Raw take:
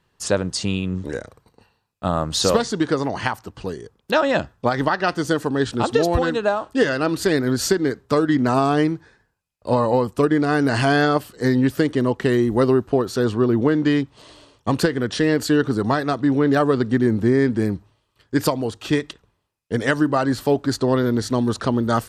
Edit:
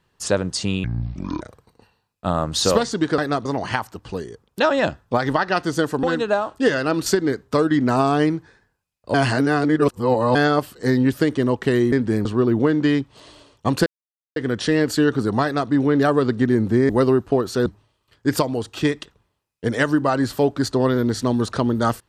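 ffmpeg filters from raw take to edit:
-filter_complex "[0:a]asplit=14[a][b][c][d][e][f][g][h][i][j][k][l][m][n];[a]atrim=end=0.844[o];[b]atrim=start=0.84:end=1.2,asetpts=PTS-STARTPTS,asetrate=27783,aresample=44100[p];[c]atrim=start=1.196:end=2.972[q];[d]atrim=start=15.948:end=16.222[r];[e]atrim=start=2.968:end=5.552[s];[f]atrim=start=6.178:end=7.212[t];[g]atrim=start=7.638:end=9.722[u];[h]atrim=start=9.718:end=10.932,asetpts=PTS-STARTPTS,areverse[v];[i]atrim=start=10.928:end=12.502[w];[j]atrim=start=17.408:end=17.742[x];[k]atrim=start=13.268:end=14.88,asetpts=PTS-STARTPTS,afade=t=out:st=1.608:d=0.004:c=hsin,apad=pad_dur=0.5[y];[l]atrim=start=14.88:end=17.412,asetpts=PTS-STARTPTS,afade=t=in:d=0.004:c=hsin[z];[m]atrim=start=12.498:end=13.272[aa];[n]atrim=start=17.738[ab];[o][p]acrossfade=d=0.004:c1=hsin:c2=hsin[ac];[ac][q]acrossfade=d=0.004:c1=hsin:c2=hsin[ad];[ad][r]acrossfade=d=0.004:c1=hsin:c2=hsin[ae];[ae][s]acrossfade=d=0.004:c1=hsin:c2=hsin[af];[af][t]acrossfade=d=0.004:c1=hsin:c2=hsin[ag];[ag][u]acrossfade=d=0.004:c1=hsin:c2=hsin[ah];[ah][v]acrossfade=d=0.004:c1=hsin:c2=hsin[ai];[ai][w]acrossfade=d=0.004:c1=hsin:c2=hsin[aj];[aj][x]acrossfade=d=0.004:c1=hsin:c2=hsin[ak];[y][z]concat=n=2:v=0:a=1[al];[ak][al]acrossfade=d=0.004:c1=hsin:c2=hsin[am];[am][aa]acrossfade=d=0.004:c1=hsin:c2=hsin[an];[an][ab]acrossfade=d=0.004:c1=hsin:c2=hsin"

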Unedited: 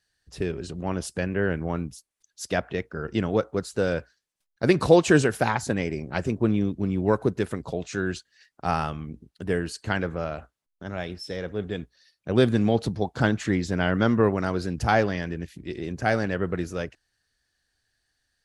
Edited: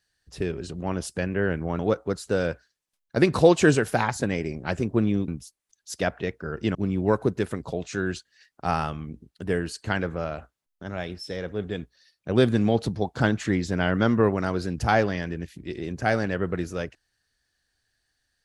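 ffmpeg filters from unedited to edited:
-filter_complex "[0:a]asplit=4[a][b][c][d];[a]atrim=end=1.792[e];[b]atrim=start=3.258:end=6.752[f];[c]atrim=start=1.788:end=3.262[g];[d]atrim=start=6.748[h];[e][f]acrossfade=d=0.004:c1=hsin:c2=hsin[i];[i][g]acrossfade=d=0.004:c1=hsin:c2=hsin[j];[j][h]acrossfade=d=0.004:c1=hsin:c2=hsin"

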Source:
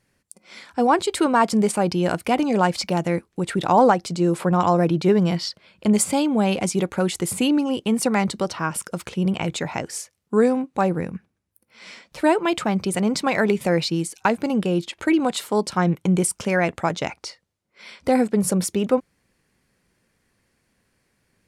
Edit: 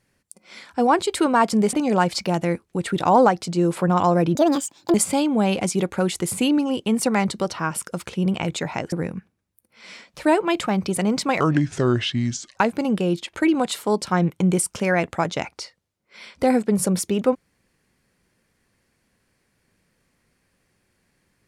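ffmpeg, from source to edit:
-filter_complex "[0:a]asplit=7[a][b][c][d][e][f][g];[a]atrim=end=1.732[h];[b]atrim=start=2.358:end=4.984[i];[c]atrim=start=4.98:end=5.94,asetpts=PTS-STARTPTS,asetrate=71442,aresample=44100,atrim=end_sample=26133,asetpts=PTS-STARTPTS[j];[d]atrim=start=5.936:end=9.922[k];[e]atrim=start=10.898:end=13.384[l];[f]atrim=start=13.38:end=14.22,asetpts=PTS-STARTPTS,asetrate=31752,aresample=44100[m];[g]atrim=start=14.216[n];[h][i]acrossfade=d=0.004:c1=hsin:c2=hsin[o];[o][j]acrossfade=d=0.004:c1=hsin:c2=hsin[p];[p][k]acrossfade=d=0.004:c1=hsin:c2=hsin[q];[q][l]acrossfade=d=0.004:c1=hsin:c2=hsin[r];[r][m]acrossfade=d=0.004:c1=hsin:c2=hsin[s];[s][n]acrossfade=d=0.004:c1=hsin:c2=hsin"

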